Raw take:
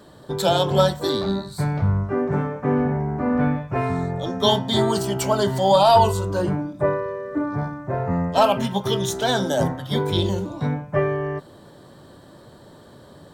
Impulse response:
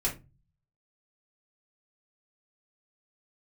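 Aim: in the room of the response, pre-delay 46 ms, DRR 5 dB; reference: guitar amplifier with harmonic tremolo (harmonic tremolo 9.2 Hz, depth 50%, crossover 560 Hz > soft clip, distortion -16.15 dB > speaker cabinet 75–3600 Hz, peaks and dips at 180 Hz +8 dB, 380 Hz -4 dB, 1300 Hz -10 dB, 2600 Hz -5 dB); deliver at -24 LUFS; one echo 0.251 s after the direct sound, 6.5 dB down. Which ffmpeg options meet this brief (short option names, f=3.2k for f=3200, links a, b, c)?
-filter_complex "[0:a]aecho=1:1:251:0.473,asplit=2[a][b];[1:a]atrim=start_sample=2205,adelay=46[c];[b][c]afir=irnorm=-1:irlink=0,volume=-11dB[d];[a][d]amix=inputs=2:normalize=0,acrossover=split=560[e][f];[e]aeval=exprs='val(0)*(1-0.5/2+0.5/2*cos(2*PI*9.2*n/s))':c=same[g];[f]aeval=exprs='val(0)*(1-0.5/2-0.5/2*cos(2*PI*9.2*n/s))':c=same[h];[g][h]amix=inputs=2:normalize=0,asoftclip=threshold=-13dB,highpass=75,equalizer=f=180:t=q:w=4:g=8,equalizer=f=380:t=q:w=4:g=-4,equalizer=f=1.3k:t=q:w=4:g=-10,equalizer=f=2.6k:t=q:w=4:g=-5,lowpass=f=3.6k:w=0.5412,lowpass=f=3.6k:w=1.3066,volume=-1.5dB"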